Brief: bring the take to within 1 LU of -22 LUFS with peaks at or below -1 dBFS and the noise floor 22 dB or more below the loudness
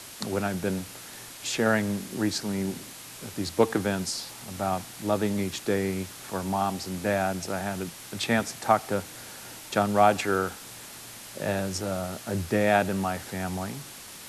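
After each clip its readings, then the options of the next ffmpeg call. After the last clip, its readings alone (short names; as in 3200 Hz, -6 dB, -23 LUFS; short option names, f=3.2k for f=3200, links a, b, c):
noise floor -44 dBFS; noise floor target -50 dBFS; loudness -28.0 LUFS; peak -6.0 dBFS; loudness target -22.0 LUFS
-> -af "afftdn=nr=6:nf=-44"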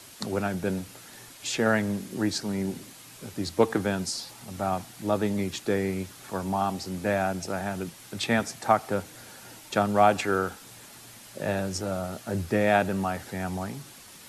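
noise floor -48 dBFS; noise floor target -50 dBFS
-> -af "afftdn=nr=6:nf=-48"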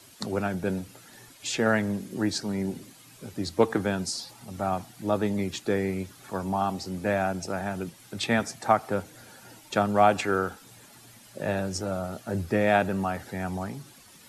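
noise floor -53 dBFS; loudness -28.5 LUFS; peak -6.5 dBFS; loudness target -22.0 LUFS
-> -af "volume=6.5dB,alimiter=limit=-1dB:level=0:latency=1"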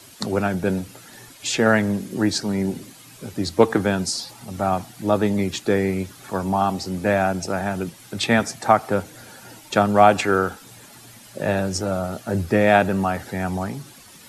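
loudness -22.0 LUFS; peak -1.0 dBFS; noise floor -46 dBFS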